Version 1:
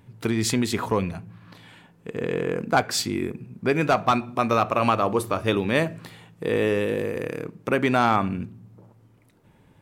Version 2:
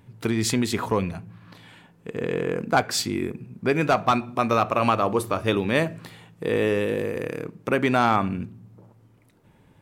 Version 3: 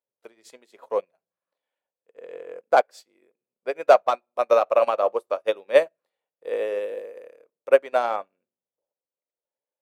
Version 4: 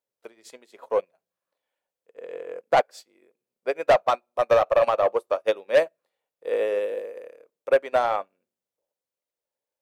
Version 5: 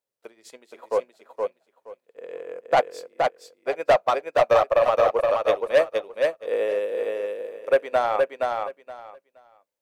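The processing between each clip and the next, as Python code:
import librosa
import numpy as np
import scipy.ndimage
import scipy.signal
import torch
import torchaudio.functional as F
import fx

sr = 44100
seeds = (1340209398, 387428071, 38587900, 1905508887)

y1 = x
y2 = fx.highpass_res(y1, sr, hz=550.0, q=4.9)
y2 = fx.upward_expand(y2, sr, threshold_db=-35.0, expansion=2.5)
y3 = 10.0 ** (-14.0 / 20.0) * np.tanh(y2 / 10.0 ** (-14.0 / 20.0))
y3 = y3 * 10.0 ** (2.5 / 20.0)
y4 = fx.echo_feedback(y3, sr, ms=471, feedback_pct=19, wet_db=-3.5)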